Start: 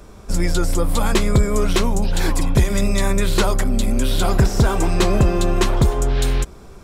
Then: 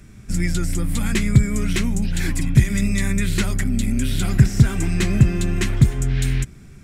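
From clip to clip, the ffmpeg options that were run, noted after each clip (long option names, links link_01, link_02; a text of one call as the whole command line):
ffmpeg -i in.wav -af "equalizer=frequency=125:width_type=o:width=1:gain=11,equalizer=frequency=250:width_type=o:width=1:gain=5,equalizer=frequency=500:width_type=o:width=1:gain=-10,equalizer=frequency=1000:width_type=o:width=1:gain=-11,equalizer=frequency=2000:width_type=o:width=1:gain=10,equalizer=frequency=4000:width_type=o:width=1:gain=-3,equalizer=frequency=8000:width_type=o:width=1:gain=4,volume=-5dB" out.wav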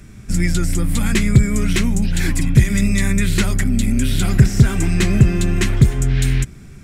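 ffmpeg -i in.wav -af "asoftclip=type=tanh:threshold=-4dB,volume=4dB" out.wav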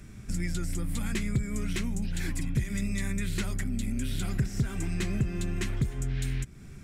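ffmpeg -i in.wav -af "acompressor=threshold=-26dB:ratio=2,volume=-6.5dB" out.wav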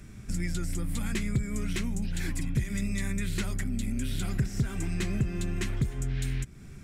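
ffmpeg -i in.wav -af anull out.wav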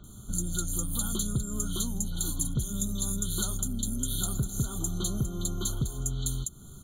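ffmpeg -i in.wav -filter_complex "[0:a]acrossover=split=3700[link_01][link_02];[link_02]adelay=40[link_03];[link_01][link_03]amix=inputs=2:normalize=0,crystalizer=i=5.5:c=0,afftfilt=real='re*eq(mod(floor(b*sr/1024/1500),2),0)':imag='im*eq(mod(floor(b*sr/1024/1500),2),0)':win_size=1024:overlap=0.75,volume=-2dB" out.wav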